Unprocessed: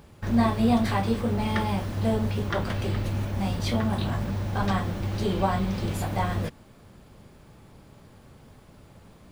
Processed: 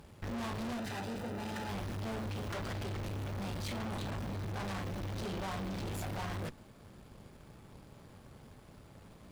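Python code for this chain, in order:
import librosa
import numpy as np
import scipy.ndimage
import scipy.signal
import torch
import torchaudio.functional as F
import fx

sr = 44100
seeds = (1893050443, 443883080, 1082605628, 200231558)

y = fx.tube_stage(x, sr, drive_db=38.0, bias=0.8)
y = fx.notch_comb(y, sr, f0_hz=1100.0, at=(0.77, 1.69))
y = y * 10.0 ** (1.0 / 20.0)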